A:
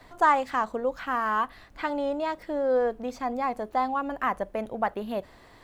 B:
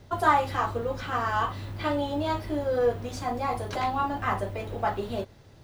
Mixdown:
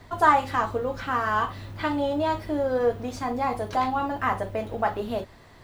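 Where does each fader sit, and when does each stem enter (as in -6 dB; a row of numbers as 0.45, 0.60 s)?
0.0, -2.0 dB; 0.00, 0.00 s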